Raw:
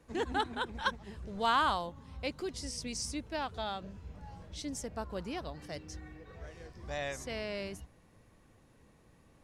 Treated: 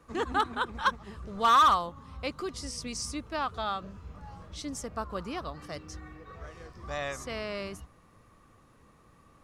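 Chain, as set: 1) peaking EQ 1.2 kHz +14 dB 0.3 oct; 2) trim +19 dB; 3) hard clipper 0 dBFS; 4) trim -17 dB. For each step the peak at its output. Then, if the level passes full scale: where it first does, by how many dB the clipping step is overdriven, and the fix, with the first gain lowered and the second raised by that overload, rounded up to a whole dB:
-11.0 dBFS, +8.0 dBFS, 0.0 dBFS, -17.0 dBFS; step 2, 8.0 dB; step 2 +11 dB, step 4 -9 dB

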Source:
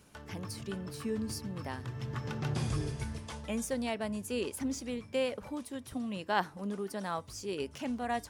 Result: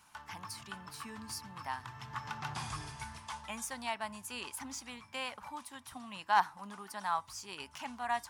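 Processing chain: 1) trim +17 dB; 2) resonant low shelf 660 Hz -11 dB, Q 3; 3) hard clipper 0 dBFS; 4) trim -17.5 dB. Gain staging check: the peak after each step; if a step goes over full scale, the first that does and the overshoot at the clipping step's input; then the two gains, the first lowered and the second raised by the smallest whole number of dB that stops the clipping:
+1.0 dBFS, +3.0 dBFS, 0.0 dBFS, -17.5 dBFS; step 1, 3.0 dB; step 1 +14 dB, step 4 -14.5 dB

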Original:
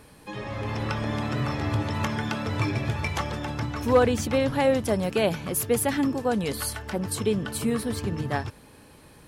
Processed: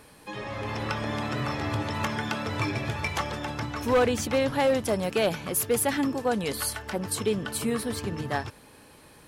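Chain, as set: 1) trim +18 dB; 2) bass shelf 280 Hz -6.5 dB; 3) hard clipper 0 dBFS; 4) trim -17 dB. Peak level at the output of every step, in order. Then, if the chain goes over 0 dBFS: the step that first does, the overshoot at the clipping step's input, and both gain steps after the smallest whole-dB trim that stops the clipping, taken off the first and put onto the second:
+8.0 dBFS, +8.0 dBFS, 0.0 dBFS, -17.0 dBFS; step 1, 8.0 dB; step 1 +10 dB, step 4 -9 dB

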